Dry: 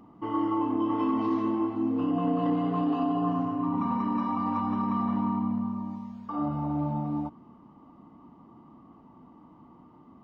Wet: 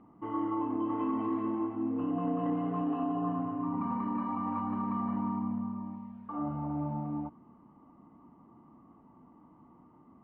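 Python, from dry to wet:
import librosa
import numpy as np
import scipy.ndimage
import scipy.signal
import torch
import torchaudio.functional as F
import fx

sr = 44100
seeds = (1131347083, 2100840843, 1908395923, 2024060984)

y = scipy.signal.sosfilt(scipy.signal.butter(4, 2500.0, 'lowpass', fs=sr, output='sos'), x)
y = F.gain(torch.from_numpy(y), -5.0).numpy()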